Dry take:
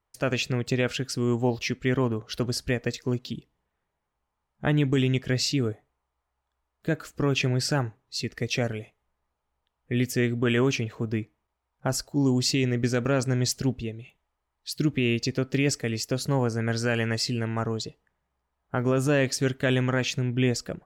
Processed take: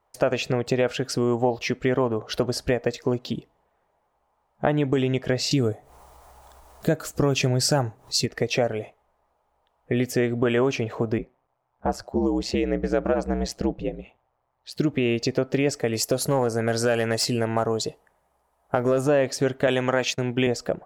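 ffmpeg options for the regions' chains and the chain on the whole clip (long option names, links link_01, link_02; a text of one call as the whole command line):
ffmpeg -i in.wav -filter_complex "[0:a]asettb=1/sr,asplit=3[link_01][link_02][link_03];[link_01]atrim=end=5.514[link_04];[link_02]atrim=start=5.51:end=8.26,asetpts=PTS-STARTPTS,afade=type=in:duration=0.004:curve=qsin,afade=type=out:start_time=2.746:duration=0.004:curve=qsin,bass=frequency=250:gain=7,treble=frequency=4000:gain=13,acompressor=mode=upward:threshold=-40dB:ratio=2.5:attack=3.2:release=140:knee=2.83:detection=peak[link_05];[link_03]atrim=start=8.256[link_06];[link_04][link_05]acrossfade=duration=0.004:curve1=hsin:curve2=qsin[link_07];[link_07][link_06]acrossfade=duration=0.004:curve1=qsin:curve2=hsin,asettb=1/sr,asplit=3[link_08][link_09][link_10];[link_08]atrim=end=11.184[link_11];[link_09]atrim=start=11.18:end=14.77,asetpts=PTS-STARTPTS,afade=type=in:duration=0.004:curve=qsin,afade=type=out:start_time=3.586:duration=0.004:curve=qsin,highshelf=frequency=4400:gain=-11,aeval=exprs='val(0)*sin(2*PI*63*n/s)':channel_layout=same[link_12];[link_10]atrim=start=14.766[link_13];[link_11][link_12]acrossfade=duration=0.004:curve1=hsin:curve2=qsin[link_14];[link_14][link_13]acrossfade=duration=0.004:curve1=qsin:curve2=hsin,asettb=1/sr,asplit=3[link_15][link_16][link_17];[link_15]atrim=end=15.934[link_18];[link_16]atrim=start=15.93:end=19.01,asetpts=PTS-STARTPTS,afade=type=in:duration=0.004:curve=qsin,afade=type=out:start_time=3.076:duration=0.004:curve=qsin,equalizer=frequency=11000:width=0.72:gain=13.5,asoftclip=type=hard:threshold=-16.5dB[link_19];[link_17]atrim=start=19.006[link_20];[link_18][link_19]acrossfade=duration=0.004:curve1=hsin:curve2=qsin[link_21];[link_21][link_20]acrossfade=duration=0.004:curve1=qsin:curve2=hsin,asettb=1/sr,asplit=3[link_22][link_23][link_24];[link_22]atrim=end=19.674[link_25];[link_23]atrim=start=19.67:end=20.47,asetpts=PTS-STARTPTS,afade=type=in:duration=0.004:curve=qsin,afade=type=out:start_time=0.796:duration=0.004:curve=qsin,highpass=120,agate=range=-33dB:threshold=-28dB:ratio=3:release=100:detection=peak,highshelf=frequency=2100:gain=9[link_26];[link_24]atrim=start=20.466[link_27];[link_25][link_26]acrossfade=duration=0.004:curve1=hsin:curve2=qsin[link_28];[link_28][link_27]acrossfade=duration=0.004:curve1=qsin:curve2=hsin,equalizer=frequency=670:width_type=o:width=1.8:gain=14,acompressor=threshold=-25dB:ratio=2.5,volume=3dB" out.wav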